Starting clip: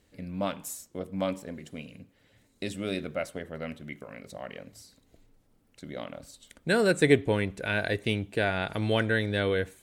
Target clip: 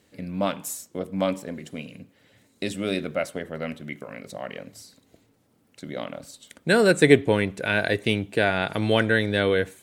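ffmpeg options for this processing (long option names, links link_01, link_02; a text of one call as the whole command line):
ffmpeg -i in.wav -af "highpass=110,volume=5.5dB" out.wav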